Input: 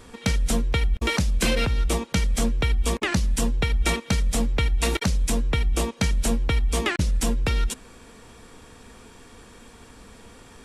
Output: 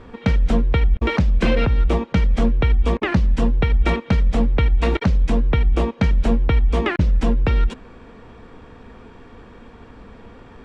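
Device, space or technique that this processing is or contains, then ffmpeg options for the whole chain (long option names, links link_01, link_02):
phone in a pocket: -af "lowpass=3300,highshelf=frequency=2100:gain=-9,volume=6dB"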